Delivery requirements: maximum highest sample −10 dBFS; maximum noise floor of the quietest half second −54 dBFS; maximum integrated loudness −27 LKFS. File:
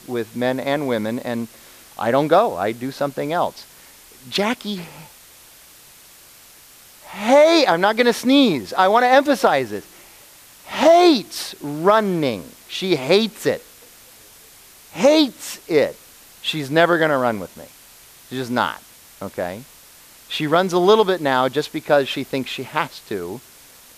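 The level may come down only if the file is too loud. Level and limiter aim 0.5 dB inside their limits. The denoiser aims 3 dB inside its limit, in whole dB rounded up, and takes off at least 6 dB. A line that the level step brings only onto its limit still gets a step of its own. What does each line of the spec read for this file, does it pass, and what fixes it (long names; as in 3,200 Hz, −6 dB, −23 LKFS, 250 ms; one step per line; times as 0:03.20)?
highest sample −3.5 dBFS: out of spec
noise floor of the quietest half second −46 dBFS: out of spec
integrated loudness −18.5 LKFS: out of spec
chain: level −9 dB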